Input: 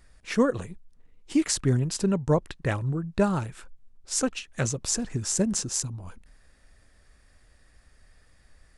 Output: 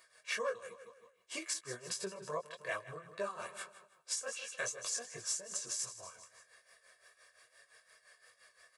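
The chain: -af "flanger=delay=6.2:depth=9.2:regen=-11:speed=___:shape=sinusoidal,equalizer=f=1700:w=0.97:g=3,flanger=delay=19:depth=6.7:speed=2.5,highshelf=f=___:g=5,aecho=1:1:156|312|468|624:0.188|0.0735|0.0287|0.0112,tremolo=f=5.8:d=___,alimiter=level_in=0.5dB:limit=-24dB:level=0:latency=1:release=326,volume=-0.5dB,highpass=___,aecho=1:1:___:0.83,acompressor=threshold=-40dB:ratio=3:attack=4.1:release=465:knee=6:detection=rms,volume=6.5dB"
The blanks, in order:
0.38, 8900, 0.74, 550, 1.8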